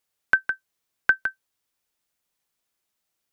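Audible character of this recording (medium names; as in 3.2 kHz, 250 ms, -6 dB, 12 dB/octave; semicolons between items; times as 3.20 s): noise floor -80 dBFS; spectral tilt +0.5 dB/octave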